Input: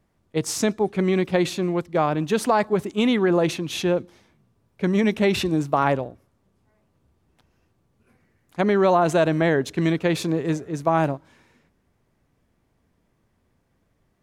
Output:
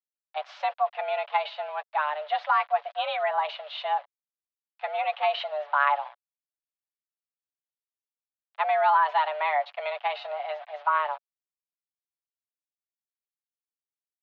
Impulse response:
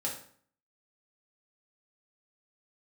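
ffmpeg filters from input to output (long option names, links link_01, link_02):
-af "aeval=exprs='val(0)*gte(abs(val(0)),0.0133)':channel_layout=same,aecho=1:1:7.2:0.48,highpass=frequency=340:width_type=q:width=0.5412,highpass=frequency=340:width_type=q:width=1.307,lowpass=frequency=3400:width_type=q:width=0.5176,lowpass=frequency=3400:width_type=q:width=0.7071,lowpass=frequency=3400:width_type=q:width=1.932,afreqshift=300,volume=-4.5dB"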